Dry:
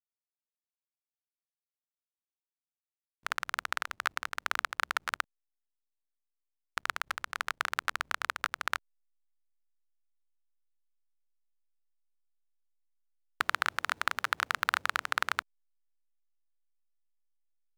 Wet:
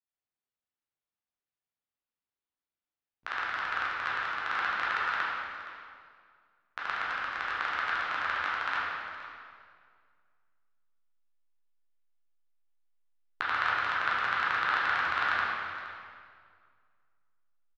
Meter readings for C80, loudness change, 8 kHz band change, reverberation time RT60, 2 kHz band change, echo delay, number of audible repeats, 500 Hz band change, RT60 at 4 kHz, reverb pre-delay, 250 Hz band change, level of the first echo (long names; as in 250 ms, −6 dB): −0.5 dB, +3.0 dB, below −10 dB, 2.1 s, +3.5 dB, 469 ms, 1, +3.0 dB, 1.8 s, 10 ms, +4.5 dB, −14.0 dB